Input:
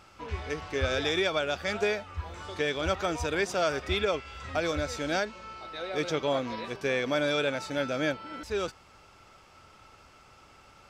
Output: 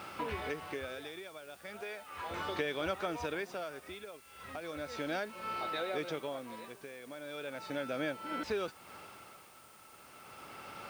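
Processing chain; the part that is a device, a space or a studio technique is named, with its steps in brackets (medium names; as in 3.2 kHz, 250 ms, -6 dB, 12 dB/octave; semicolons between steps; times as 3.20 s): 1.81–2.31 s: high-pass 590 Hz 6 dB/octave; medium wave at night (band-pass 150–3900 Hz; compression 4:1, threshold -45 dBFS, peak gain reduction 18 dB; tremolo 0.36 Hz, depth 80%; whistle 9 kHz -77 dBFS; white noise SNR 22 dB); trim +10 dB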